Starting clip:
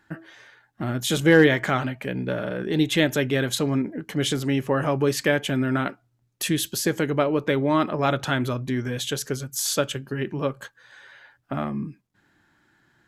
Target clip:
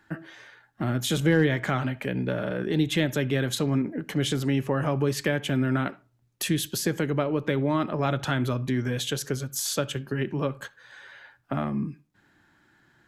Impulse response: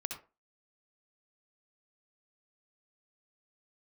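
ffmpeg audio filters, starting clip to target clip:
-filter_complex "[0:a]acrossover=split=200[s0][s1];[s1]acompressor=threshold=0.0355:ratio=2[s2];[s0][s2]amix=inputs=2:normalize=0,asplit=2[s3][s4];[1:a]atrim=start_sample=2205,lowpass=5400[s5];[s4][s5]afir=irnorm=-1:irlink=0,volume=0.158[s6];[s3][s6]amix=inputs=2:normalize=0"

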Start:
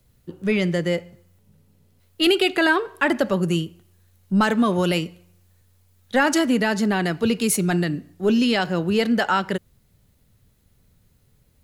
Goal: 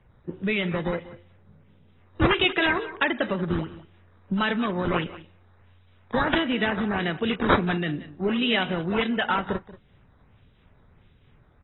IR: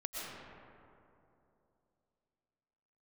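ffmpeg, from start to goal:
-filter_complex "[0:a]acrossover=split=1900[s0][s1];[s0]acompressor=threshold=0.0447:ratio=6[s2];[s1]acrusher=samples=9:mix=1:aa=0.000001:lfo=1:lforange=14.4:lforate=1.5[s3];[s2][s3]amix=inputs=2:normalize=0,aecho=1:1:184:0.141,volume=1.33" -ar 22050 -c:a aac -b:a 16k

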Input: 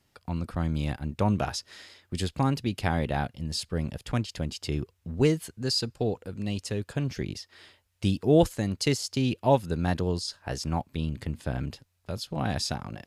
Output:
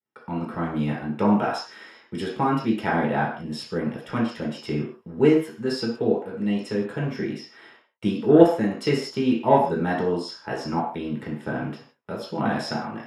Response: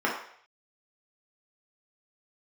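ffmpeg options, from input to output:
-filter_complex "[0:a]acontrast=83,agate=range=0.0224:threshold=0.00398:ratio=3:detection=peak[s0];[1:a]atrim=start_sample=2205,afade=t=out:st=0.23:d=0.01,atrim=end_sample=10584[s1];[s0][s1]afir=irnorm=-1:irlink=0,volume=0.211"

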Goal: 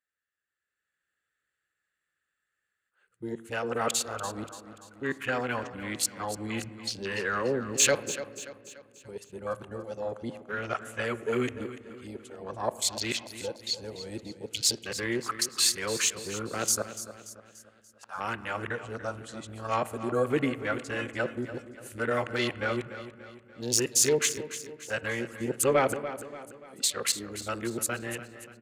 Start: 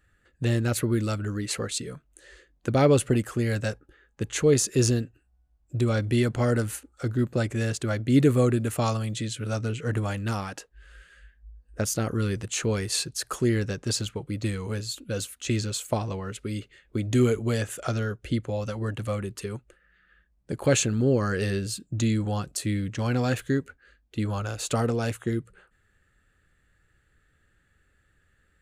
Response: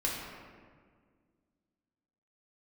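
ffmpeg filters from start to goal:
-filter_complex "[0:a]areverse,highpass=f=1400:p=1,afwtdn=0.0112,dynaudnorm=f=120:g=13:m=2.51,asoftclip=type=tanh:threshold=0.398,aecho=1:1:290|580|870|1160|1450:0.224|0.105|0.0495|0.0232|0.0109,asplit=2[s0][s1];[1:a]atrim=start_sample=2205,lowpass=2800[s2];[s1][s2]afir=irnorm=-1:irlink=0,volume=0.112[s3];[s0][s3]amix=inputs=2:normalize=0,volume=0.75"

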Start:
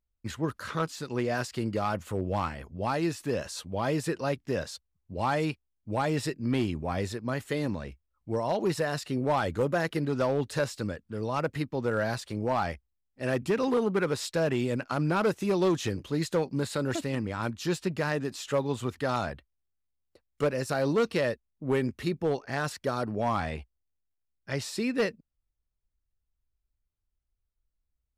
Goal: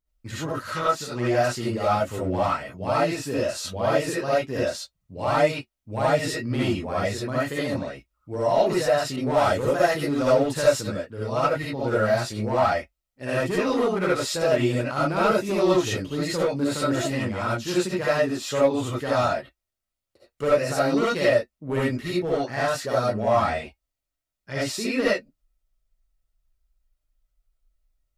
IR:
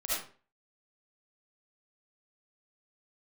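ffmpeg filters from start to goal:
-filter_complex "[0:a]flanger=delay=6.4:depth=3.1:regen=-54:speed=0.37:shape=triangular[s0];[1:a]atrim=start_sample=2205,atrim=end_sample=4410[s1];[s0][s1]afir=irnorm=-1:irlink=0,asettb=1/sr,asplit=3[s2][s3][s4];[s2]atrim=end=9.164[s5];[s3]atrim=start=9.16:end=10.81,asetpts=PTS-STARTPTS,afade=t=in:d=0.004:c=qsin,afade=t=out:st=1.646:d=0.004:c=qsin,adynamicequalizer=threshold=0.00501:dfrequency=4600:dqfactor=0.7:tfrequency=4600:tqfactor=0.7:attack=5:release=100:ratio=0.375:range=2.5:mode=boostabove:tftype=highshelf[s6];[s4]atrim=start=10.806[s7];[s5][s6]acrossfade=d=0.004:c1=hsin:c2=qsin[s8];[s8][s7]acrossfade=d=0.004:c1=qsin:c2=hsin,volume=2.11"

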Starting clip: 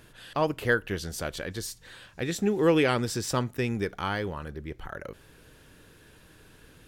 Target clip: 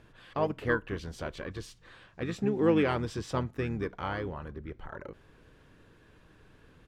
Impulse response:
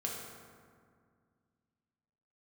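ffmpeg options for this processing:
-filter_complex "[0:a]asplit=2[s0][s1];[s1]asetrate=29433,aresample=44100,atempo=1.49831,volume=0.398[s2];[s0][s2]amix=inputs=2:normalize=0,aemphasis=mode=reproduction:type=75fm,volume=0.596"

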